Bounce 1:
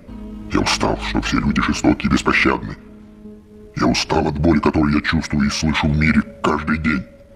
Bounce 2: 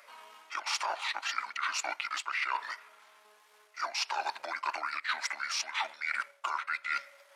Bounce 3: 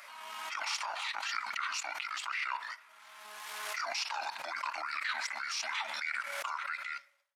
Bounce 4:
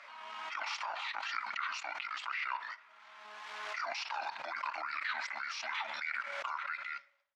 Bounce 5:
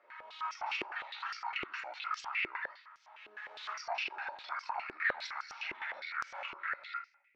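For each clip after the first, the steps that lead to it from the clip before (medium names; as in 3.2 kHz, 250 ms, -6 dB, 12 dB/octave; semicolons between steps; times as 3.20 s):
high-pass 880 Hz 24 dB/octave; reverse; compression 10:1, threshold -30 dBFS, peak gain reduction 18 dB; reverse
fade out at the end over 0.70 s; peaking EQ 420 Hz -14.5 dB 0.87 oct; swell ahead of each attack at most 26 dB/s; trim -3.5 dB
distance through air 160 m
reverberation RT60 0.65 s, pre-delay 5 ms, DRR 1.5 dB; step-sequenced band-pass 9.8 Hz 370–5700 Hz; trim +6 dB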